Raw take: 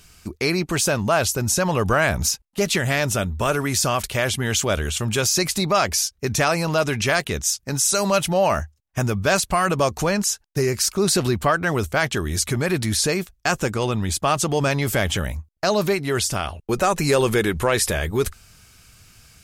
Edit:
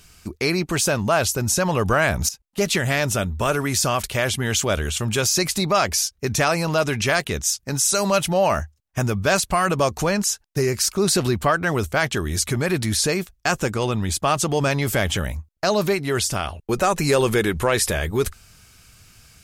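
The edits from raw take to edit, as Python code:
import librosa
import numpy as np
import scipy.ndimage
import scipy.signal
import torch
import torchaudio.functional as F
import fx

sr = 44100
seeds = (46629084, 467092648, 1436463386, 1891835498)

y = fx.edit(x, sr, fx.fade_in_from(start_s=2.29, length_s=0.3, floor_db=-14.0), tone=tone)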